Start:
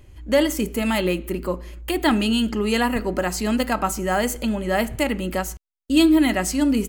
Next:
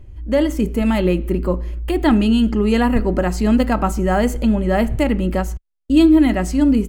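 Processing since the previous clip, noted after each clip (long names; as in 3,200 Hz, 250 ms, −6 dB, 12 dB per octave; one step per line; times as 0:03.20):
spectral tilt −2.5 dB per octave
automatic gain control gain up to 6 dB
level −2 dB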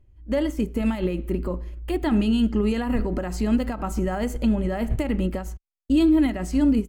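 brickwall limiter −13.5 dBFS, peak gain reduction 9.5 dB
expander for the loud parts 2.5 to 1, over −30 dBFS
level +2 dB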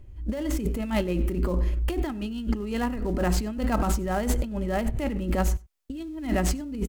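gap after every zero crossing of 0.063 ms
compressor whose output falls as the input rises −31 dBFS, ratio −1
slap from a distant wall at 16 metres, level −24 dB
level +3.5 dB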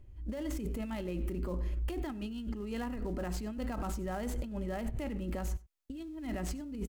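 brickwall limiter −20.5 dBFS, peak gain reduction 9.5 dB
level −7.5 dB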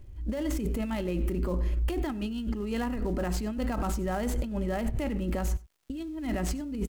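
surface crackle 220 per second −65 dBFS
level +6.5 dB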